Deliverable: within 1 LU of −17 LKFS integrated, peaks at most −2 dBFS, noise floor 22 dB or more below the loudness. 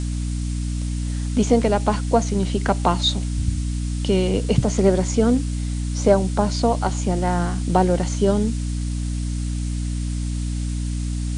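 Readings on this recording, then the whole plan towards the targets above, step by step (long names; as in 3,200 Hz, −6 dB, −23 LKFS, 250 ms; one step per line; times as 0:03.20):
mains hum 60 Hz; hum harmonics up to 300 Hz; level of the hum −22 dBFS; background noise floor −25 dBFS; target noise floor −44 dBFS; integrated loudness −22.0 LKFS; sample peak −3.0 dBFS; target loudness −17.0 LKFS
→ hum removal 60 Hz, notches 5
broadband denoise 19 dB, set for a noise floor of −25 dBFS
level +5 dB
brickwall limiter −2 dBFS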